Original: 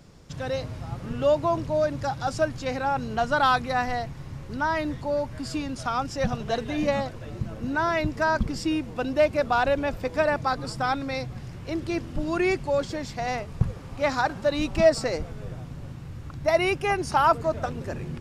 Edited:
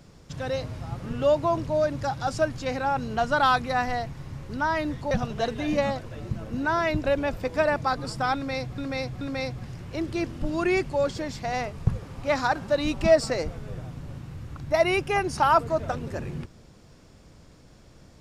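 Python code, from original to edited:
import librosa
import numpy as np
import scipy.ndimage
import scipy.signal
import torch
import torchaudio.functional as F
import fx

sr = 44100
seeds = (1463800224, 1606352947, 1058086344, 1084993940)

y = fx.edit(x, sr, fx.cut(start_s=5.11, length_s=1.1),
    fx.cut(start_s=8.14, length_s=1.5),
    fx.repeat(start_s=10.95, length_s=0.43, count=3), tone=tone)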